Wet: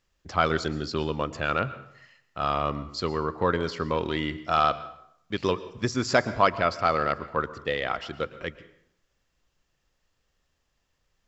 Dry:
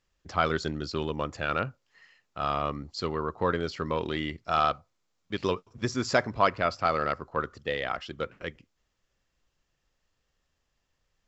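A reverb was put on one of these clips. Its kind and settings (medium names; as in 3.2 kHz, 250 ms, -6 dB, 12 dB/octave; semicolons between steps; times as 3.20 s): plate-style reverb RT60 0.72 s, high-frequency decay 0.8×, pre-delay 100 ms, DRR 15.5 dB; trim +2.5 dB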